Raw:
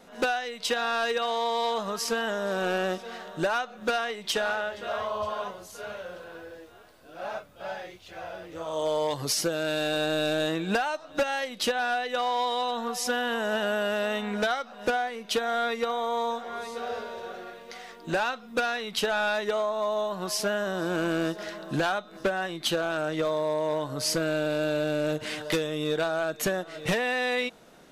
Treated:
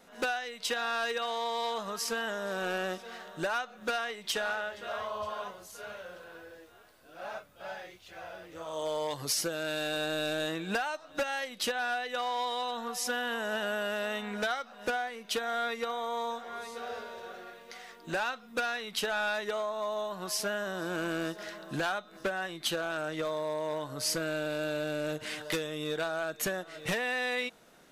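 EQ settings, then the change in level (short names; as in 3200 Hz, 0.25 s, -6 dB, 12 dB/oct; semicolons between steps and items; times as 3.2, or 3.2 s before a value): bell 1700 Hz +3.5 dB 1.6 oct; high shelf 5900 Hz +7 dB; -7.0 dB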